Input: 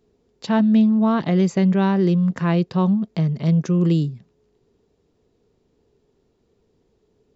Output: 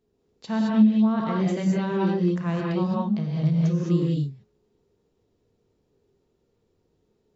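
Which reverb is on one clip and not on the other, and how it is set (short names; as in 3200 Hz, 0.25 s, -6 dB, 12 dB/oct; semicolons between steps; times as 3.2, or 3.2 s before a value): non-linear reverb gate 0.24 s rising, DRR -3 dB; gain -9.5 dB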